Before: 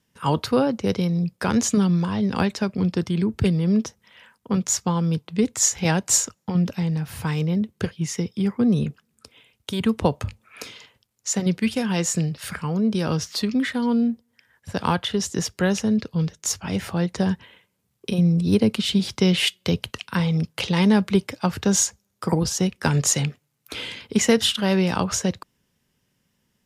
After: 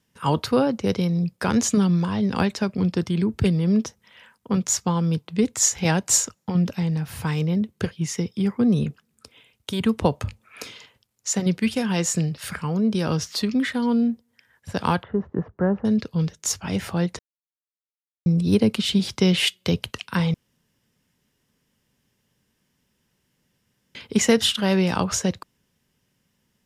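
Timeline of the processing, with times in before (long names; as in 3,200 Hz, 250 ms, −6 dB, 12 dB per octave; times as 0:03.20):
0:15.03–0:15.85: low-pass filter 1,300 Hz 24 dB per octave
0:17.19–0:18.26: silence
0:20.34–0:23.95: fill with room tone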